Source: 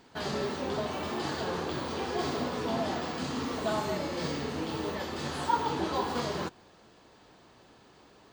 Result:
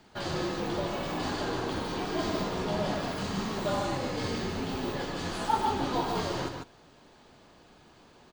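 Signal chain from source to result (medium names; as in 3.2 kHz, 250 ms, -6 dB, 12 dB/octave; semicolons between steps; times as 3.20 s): delay 147 ms -5.5 dB; frequency shift -56 Hz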